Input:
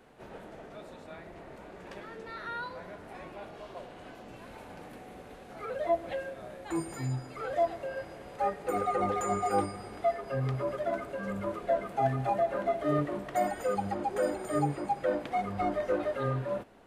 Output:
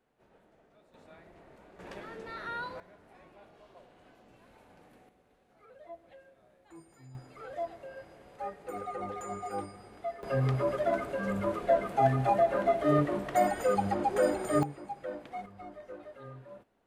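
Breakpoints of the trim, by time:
-17.5 dB
from 0.94 s -8.5 dB
from 1.79 s 0 dB
from 2.80 s -12 dB
from 5.09 s -19.5 dB
from 7.15 s -8.5 dB
from 10.23 s +3 dB
from 14.63 s -9.5 dB
from 15.46 s -16 dB

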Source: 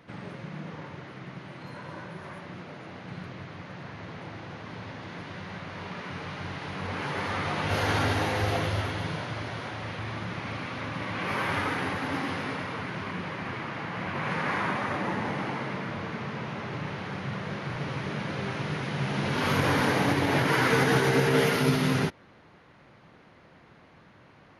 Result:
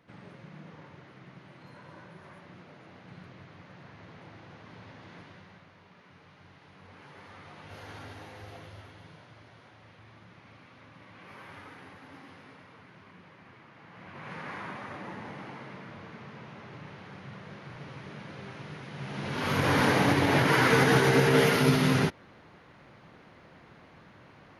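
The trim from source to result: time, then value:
5.19 s -9 dB
5.82 s -19 dB
13.73 s -19 dB
14.35 s -11 dB
18.90 s -11 dB
19.81 s +1 dB

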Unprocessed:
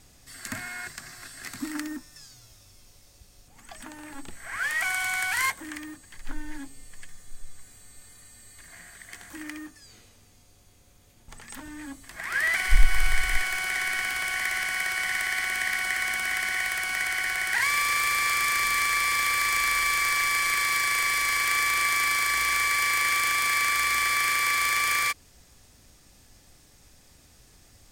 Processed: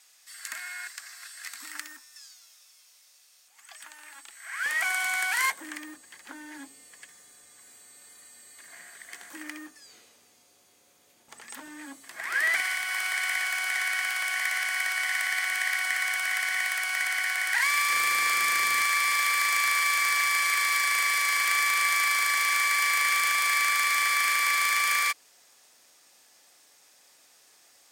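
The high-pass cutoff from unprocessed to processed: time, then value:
1.3 kHz
from 4.66 s 340 Hz
from 12.60 s 710 Hz
from 17.90 s 220 Hz
from 18.81 s 590 Hz

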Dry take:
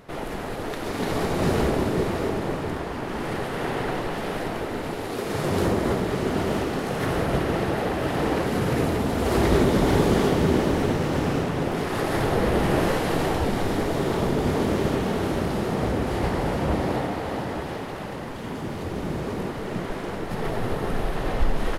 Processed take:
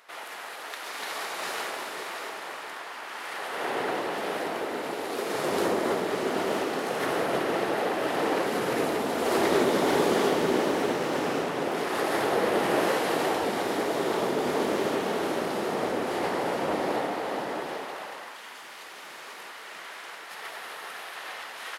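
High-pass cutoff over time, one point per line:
3.30 s 1.1 kHz
3.80 s 350 Hz
17.65 s 350 Hz
18.50 s 1.4 kHz

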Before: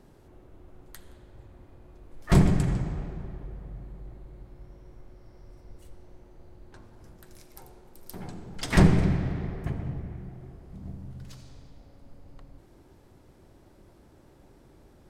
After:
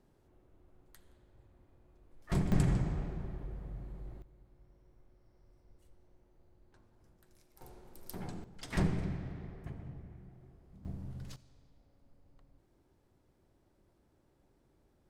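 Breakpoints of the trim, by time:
-13 dB
from 2.52 s -3 dB
from 4.22 s -15 dB
from 7.61 s -3 dB
from 8.44 s -13 dB
from 10.85 s -2.5 dB
from 11.36 s -15 dB

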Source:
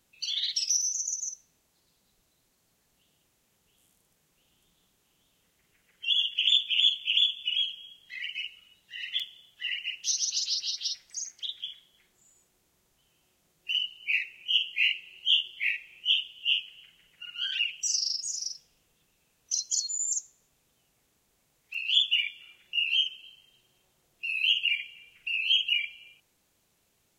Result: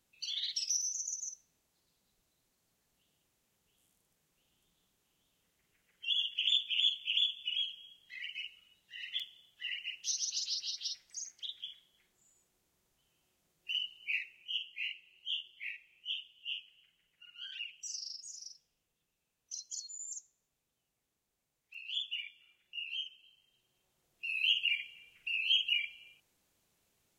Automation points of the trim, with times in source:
14.05 s -7 dB
14.74 s -14 dB
23.16 s -14 dB
24.39 s -5 dB

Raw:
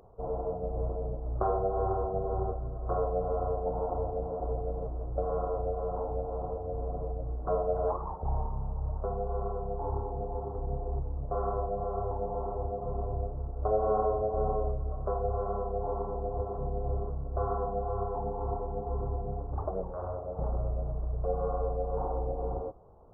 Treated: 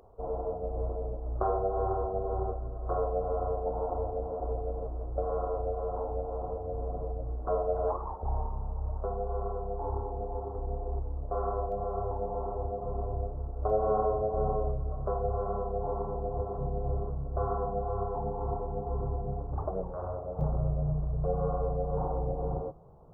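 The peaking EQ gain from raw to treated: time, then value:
peaking EQ 150 Hz 0.39 oct
-14.5 dB
from 6.48 s -5 dB
from 7.43 s -13.5 dB
from 11.72 s -4.5 dB
from 13.70 s +6 dB
from 20.41 s +14 dB

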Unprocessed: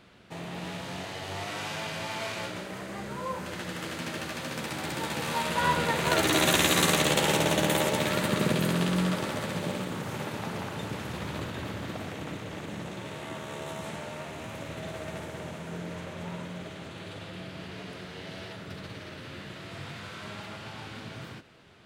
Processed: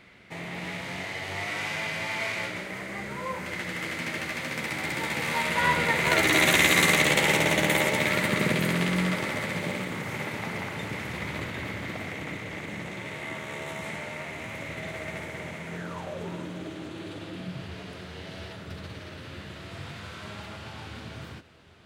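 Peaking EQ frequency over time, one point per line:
peaking EQ +13 dB 0.35 oct
15.75 s 2.1 kHz
16.30 s 320 Hz
17.33 s 320 Hz
17.73 s 76 Hz

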